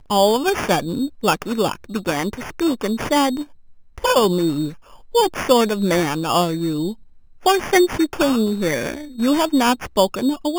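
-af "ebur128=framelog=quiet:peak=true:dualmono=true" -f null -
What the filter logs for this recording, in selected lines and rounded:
Integrated loudness:
  I:         -16.5 LUFS
  Threshold: -26.8 LUFS
Loudness range:
  LRA:         2.5 LU
  Threshold: -36.9 LUFS
  LRA low:   -18.3 LUFS
  LRA high:  -15.8 LUFS
True peak:
  Peak:       -0.8 dBFS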